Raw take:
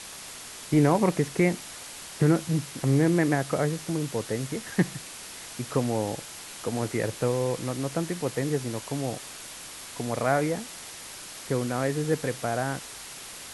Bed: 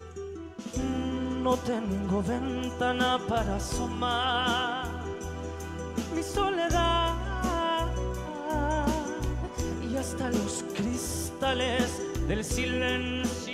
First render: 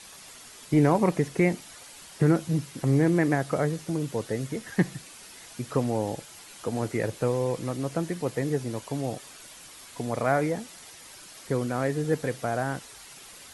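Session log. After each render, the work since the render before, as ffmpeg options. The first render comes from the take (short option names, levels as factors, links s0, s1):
-af "afftdn=nr=8:nf=-42"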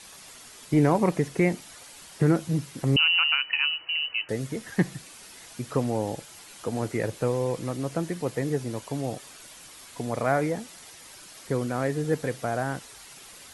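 -filter_complex "[0:a]asettb=1/sr,asplit=3[s0][s1][s2];[s0]atrim=end=2.964[s3];[s1]atrim=start=2.96:end=4.29,asetpts=PTS-STARTPTS,afade=t=in:d=0.004:c=qsin,afade=t=out:st=1.326:d=0.004:c=qsin,lowpass=f=2600:t=q:w=0.5098,lowpass=f=2600:t=q:w=0.6013,lowpass=f=2600:t=q:w=0.9,lowpass=f=2600:t=q:w=2.563,afreqshift=-3100[s4];[s2]atrim=start=4.286[s5];[s3][s4]acrossfade=d=0.004:c1=hsin:c2=qsin[s6];[s6][s5]acrossfade=d=0.004:c1=qsin:c2=hsin"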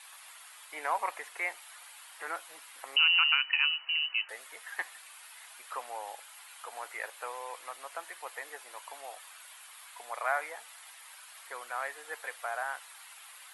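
-af "highpass=f=850:w=0.5412,highpass=f=850:w=1.3066,equalizer=f=5800:w=1.3:g=-12"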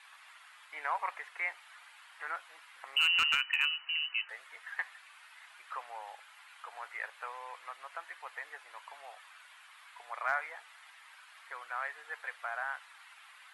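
-af "bandpass=f=1600:t=q:w=0.9:csg=0,asoftclip=type=hard:threshold=0.1"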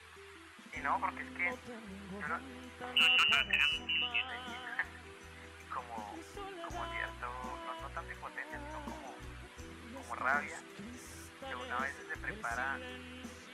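-filter_complex "[1:a]volume=0.119[s0];[0:a][s0]amix=inputs=2:normalize=0"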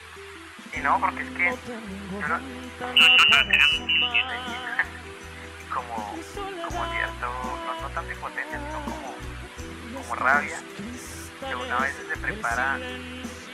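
-af "volume=3.98"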